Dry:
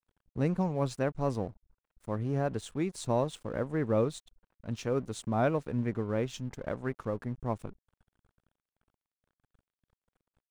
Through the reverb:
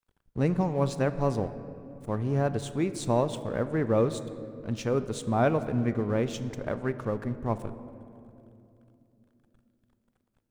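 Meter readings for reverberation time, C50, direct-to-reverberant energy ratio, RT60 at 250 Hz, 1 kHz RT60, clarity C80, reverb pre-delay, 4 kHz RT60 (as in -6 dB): 2.9 s, 12.5 dB, 11.0 dB, 4.6 s, 2.4 s, 13.5 dB, 3 ms, 1.4 s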